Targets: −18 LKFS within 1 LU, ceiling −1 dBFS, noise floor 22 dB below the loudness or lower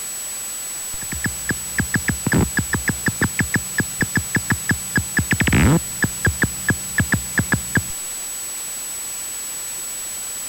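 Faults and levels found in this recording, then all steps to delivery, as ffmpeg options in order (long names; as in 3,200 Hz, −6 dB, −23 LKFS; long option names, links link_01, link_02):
interfering tone 7,900 Hz; level of the tone −27 dBFS; background noise floor −29 dBFS; target noise floor −43 dBFS; integrated loudness −21.0 LKFS; sample peak −7.0 dBFS; target loudness −18.0 LKFS
→ -af "bandreject=frequency=7900:width=30"
-af "afftdn=noise_reduction=14:noise_floor=-29"
-af "volume=3dB"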